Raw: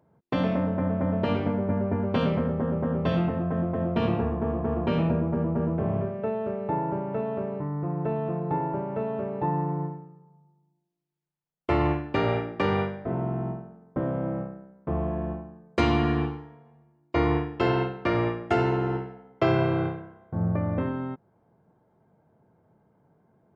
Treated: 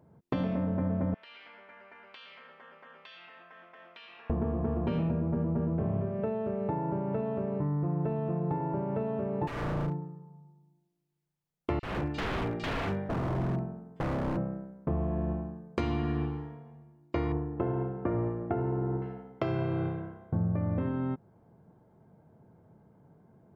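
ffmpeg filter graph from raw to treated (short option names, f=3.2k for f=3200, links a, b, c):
-filter_complex "[0:a]asettb=1/sr,asplit=3[a][b][c];[a]atrim=end=1.144[d];[b]atrim=start=1.14:end=4.3,asetpts=PTS-STARTPTS,afade=t=in:d=0.004:c=qsin,afade=t=out:st=3.156:d=0.004:c=qsin,asuperpass=centerf=3300:order=4:qfactor=0.86,acompressor=threshold=-48dB:ratio=5:attack=3.2:release=140:knee=1:detection=peak[e];[c]atrim=start=4.296[f];[d][e]acrossfade=d=0.004:c1=hsin:c2=qsin[g];[g][f]acrossfade=d=0.004:c1=qsin:c2=hsin,asettb=1/sr,asplit=3[h][i][j];[h]atrim=end=9.474[k];[i]atrim=start=9.47:end=10.02,asetpts=PTS-STARTPTS,afade=t=in:d=0.004:c=qsin,afade=t=out:st=0.546:d=0.004:c=qsin,adynamicsmooth=sensitivity=3:basefreq=2.1k,aeval=exprs='0.0355*(abs(mod(val(0)/0.0355+3,4)-2)-1)':c=same[l];[j]atrim=start=10.016[m];[k][l]acrossfade=d=0.004:c1=hsin:c2=qsin[n];[n][m]acrossfade=d=0.004:c1=qsin:c2=hsin,asettb=1/sr,asplit=3[o][p][q];[o]atrim=end=11.794[r];[p]atrim=start=11.79:end=14.37,asetpts=PTS-STARTPTS,afade=t=in:d=0.004:c=qsin,afade=t=out:st=2.576:d=0.004:c=qsin,acrossover=split=3600[s][t];[s]adelay=40[u];[u][t]amix=inputs=2:normalize=0,atrim=end_sample=113778,aeval=exprs='0.0422*(abs(mod(val(0)/0.0422+3,4)-2)-1)':c=same,acrossover=split=3700[v][w];[w]acompressor=threshold=-49dB:ratio=4:attack=1:release=60[x];[v][x]amix=inputs=2:normalize=0[y];[q]atrim=start=14.366[z];[r][y]acrossfade=d=0.004:c1=hsin:c2=qsin[aa];[aa][z]acrossfade=d=0.004:c1=qsin:c2=hsin,asettb=1/sr,asplit=3[ab][ac][ad];[ab]atrim=end=17.324[ae];[ac]atrim=start=17.32:end=19.02,asetpts=PTS-STARTPTS,afade=t=in:d=0.004:c=qsin,afade=t=out:st=1.696:d=0.004:c=qsin,lowpass=1.2k,aemphasis=mode=reproduction:type=75fm[af];[ad]atrim=start=19.016[ag];[ae][af]acrossfade=d=0.004:c1=hsin:c2=qsin[ah];[ah][ag]acrossfade=d=0.004:c1=qsin:c2=hsin,acompressor=threshold=-32dB:ratio=6,lowshelf=f=350:g=7"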